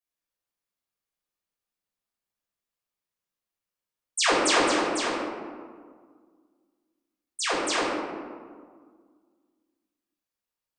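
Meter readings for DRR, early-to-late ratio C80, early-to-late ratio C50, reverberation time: −8.5 dB, 1.5 dB, −1.0 dB, 1.8 s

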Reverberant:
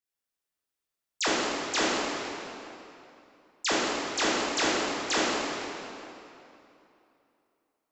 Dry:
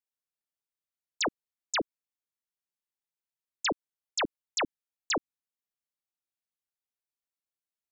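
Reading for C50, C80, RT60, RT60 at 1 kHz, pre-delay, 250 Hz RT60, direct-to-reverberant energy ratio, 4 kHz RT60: −4.0 dB, −1.5 dB, 2.9 s, 2.9 s, 7 ms, 2.9 s, −8.0 dB, 2.3 s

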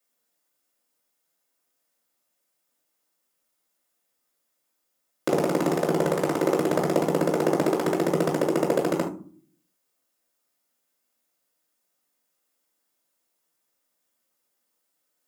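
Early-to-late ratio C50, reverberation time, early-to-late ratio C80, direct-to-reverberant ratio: 9.0 dB, non-exponential decay, 15.5 dB, −3.0 dB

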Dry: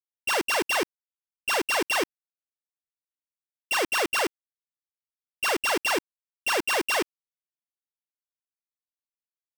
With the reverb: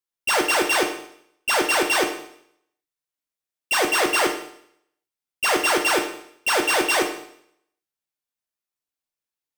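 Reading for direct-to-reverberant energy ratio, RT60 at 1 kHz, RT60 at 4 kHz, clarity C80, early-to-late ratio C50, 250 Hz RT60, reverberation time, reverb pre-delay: 2.5 dB, 0.65 s, 0.70 s, 10.5 dB, 7.5 dB, 0.70 s, 0.65 s, 7 ms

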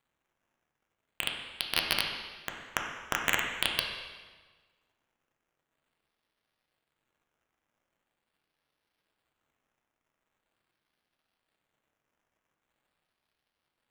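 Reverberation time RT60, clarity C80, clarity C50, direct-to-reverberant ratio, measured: 1.4 s, 5.5 dB, 3.5 dB, 0.5 dB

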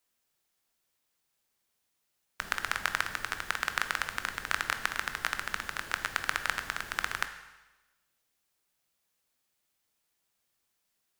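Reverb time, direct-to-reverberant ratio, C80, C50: 1.1 s, 8.5 dB, 12.5 dB, 10.5 dB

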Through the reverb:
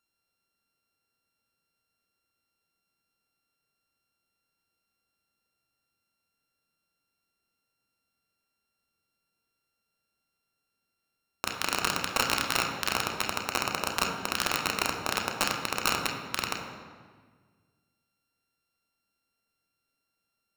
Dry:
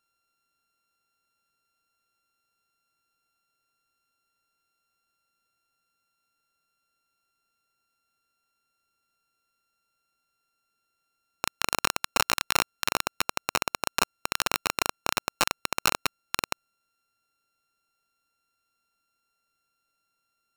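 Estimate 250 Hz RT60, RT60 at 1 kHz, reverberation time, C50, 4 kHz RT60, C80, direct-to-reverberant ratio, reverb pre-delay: 2.0 s, 1.5 s, 1.6 s, 4.5 dB, 1.2 s, 6.5 dB, 1.0 dB, 3 ms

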